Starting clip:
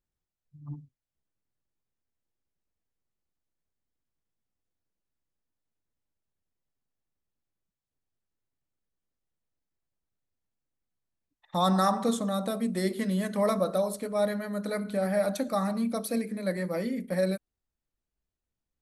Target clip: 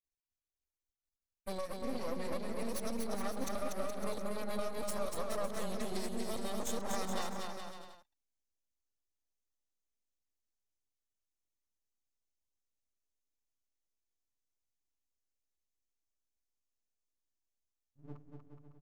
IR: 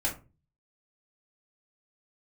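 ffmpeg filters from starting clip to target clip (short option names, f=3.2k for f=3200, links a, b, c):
-af "areverse,afftdn=nr=14:nf=-55,equalizer=f=160:t=o:w=0.67:g=-11,equalizer=f=1.6k:t=o:w=0.67:g=-9,equalizer=f=6.3k:t=o:w=0.67:g=11,acompressor=threshold=-37dB:ratio=6,aeval=exprs='max(val(0),0)':c=same,aecho=1:1:240|420|555|656.2|732.2:0.631|0.398|0.251|0.158|0.1,volume=3.5dB"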